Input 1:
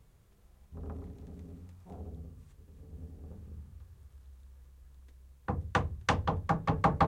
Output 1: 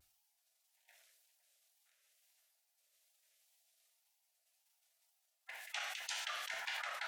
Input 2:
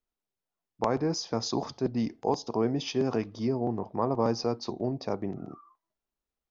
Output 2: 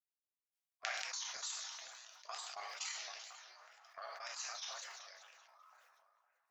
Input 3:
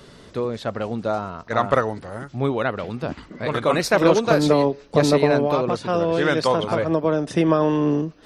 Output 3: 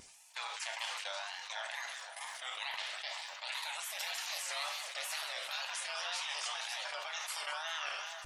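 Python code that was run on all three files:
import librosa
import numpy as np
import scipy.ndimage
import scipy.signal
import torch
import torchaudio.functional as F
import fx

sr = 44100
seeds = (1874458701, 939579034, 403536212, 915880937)

y = fx.octave_divider(x, sr, octaves=1, level_db=3.0)
y = fx.dynamic_eq(y, sr, hz=1800.0, q=1.7, threshold_db=-37.0, ratio=4.0, max_db=-4)
y = scipy.signal.sosfilt(scipy.signal.butter(8, 960.0, 'highpass', fs=sr, output='sos'), y)
y = fx.level_steps(y, sr, step_db=20)
y = fx.spec_gate(y, sr, threshold_db=-15, keep='weak')
y = fx.echo_split(y, sr, split_hz=1700.0, low_ms=510, high_ms=193, feedback_pct=52, wet_db=-14.0)
y = fx.wow_flutter(y, sr, seeds[0], rate_hz=2.1, depth_cents=140.0)
y = fx.rev_double_slope(y, sr, seeds[1], early_s=0.35, late_s=1.7, knee_db=-26, drr_db=5.5)
y = fx.sustainer(y, sr, db_per_s=26.0)
y = y * 10.0 ** (9.0 / 20.0)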